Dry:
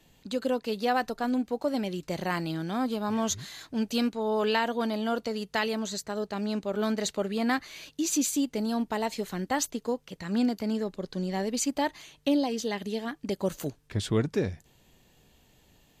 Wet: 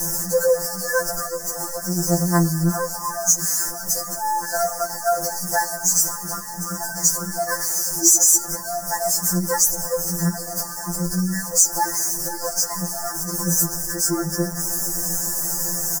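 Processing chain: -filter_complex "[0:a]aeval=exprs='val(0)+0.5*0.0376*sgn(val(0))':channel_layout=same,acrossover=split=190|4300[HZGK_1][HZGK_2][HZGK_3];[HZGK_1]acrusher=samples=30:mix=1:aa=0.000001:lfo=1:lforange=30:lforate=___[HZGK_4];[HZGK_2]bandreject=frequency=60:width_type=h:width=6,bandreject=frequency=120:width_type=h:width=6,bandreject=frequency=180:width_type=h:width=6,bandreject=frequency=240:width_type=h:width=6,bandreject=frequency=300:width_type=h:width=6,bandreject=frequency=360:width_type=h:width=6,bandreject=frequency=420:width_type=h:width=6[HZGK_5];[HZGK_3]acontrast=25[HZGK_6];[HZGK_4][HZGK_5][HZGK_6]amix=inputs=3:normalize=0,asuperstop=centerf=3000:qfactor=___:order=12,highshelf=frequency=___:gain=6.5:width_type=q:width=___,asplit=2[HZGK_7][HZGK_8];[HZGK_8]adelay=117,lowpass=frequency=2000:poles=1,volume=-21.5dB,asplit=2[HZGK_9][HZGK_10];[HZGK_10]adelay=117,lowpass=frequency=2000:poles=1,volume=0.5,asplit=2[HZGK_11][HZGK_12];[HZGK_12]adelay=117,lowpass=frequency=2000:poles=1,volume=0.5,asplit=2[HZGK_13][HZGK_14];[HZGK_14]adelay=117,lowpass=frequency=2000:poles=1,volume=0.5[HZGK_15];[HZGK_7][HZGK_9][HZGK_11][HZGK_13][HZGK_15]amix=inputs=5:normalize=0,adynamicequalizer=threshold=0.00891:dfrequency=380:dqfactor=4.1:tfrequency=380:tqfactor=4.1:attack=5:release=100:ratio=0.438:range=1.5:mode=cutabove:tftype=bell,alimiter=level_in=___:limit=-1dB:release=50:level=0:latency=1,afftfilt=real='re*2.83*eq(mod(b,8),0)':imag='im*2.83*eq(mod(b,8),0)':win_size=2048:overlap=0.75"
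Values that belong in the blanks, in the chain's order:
0.4, 0.84, 1700, 1.5, 7dB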